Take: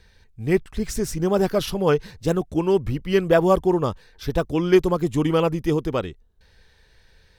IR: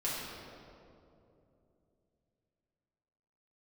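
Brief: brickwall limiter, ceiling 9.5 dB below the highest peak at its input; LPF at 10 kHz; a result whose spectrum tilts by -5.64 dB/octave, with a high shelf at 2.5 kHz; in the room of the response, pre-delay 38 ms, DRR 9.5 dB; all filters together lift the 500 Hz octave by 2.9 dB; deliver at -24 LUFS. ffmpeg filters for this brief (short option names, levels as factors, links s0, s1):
-filter_complex "[0:a]lowpass=10000,equalizer=f=500:t=o:g=3.5,highshelf=f=2500:g=6.5,alimiter=limit=0.237:level=0:latency=1,asplit=2[s0][s1];[1:a]atrim=start_sample=2205,adelay=38[s2];[s1][s2]afir=irnorm=-1:irlink=0,volume=0.178[s3];[s0][s3]amix=inputs=2:normalize=0,volume=0.891"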